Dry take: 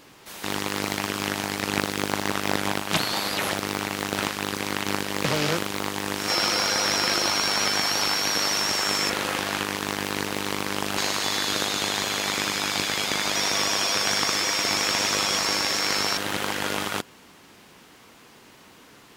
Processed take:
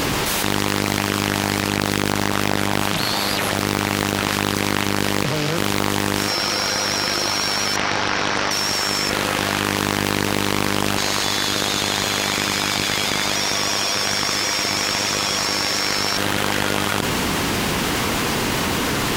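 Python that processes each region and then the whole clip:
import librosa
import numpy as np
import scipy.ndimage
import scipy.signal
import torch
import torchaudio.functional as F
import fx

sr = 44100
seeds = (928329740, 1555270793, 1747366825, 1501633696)

y = fx.chain(x, sr, fx.lowpass(hz=2800.0, slope=12),
    fx.doppler_dist(depth_ms=0.5), at=(7.76, 8.51))
y = fx.low_shelf(y, sr, hz=130.0, db=9.0)
y = fx.env_flatten(y, sr, amount_pct=100)
y = F.gain(torch.from_numpy(y), -2.5).numpy()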